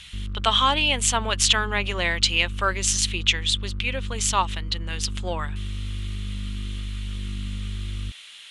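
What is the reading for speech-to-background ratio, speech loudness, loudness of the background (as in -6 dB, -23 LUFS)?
11.0 dB, -22.5 LUFS, -33.5 LUFS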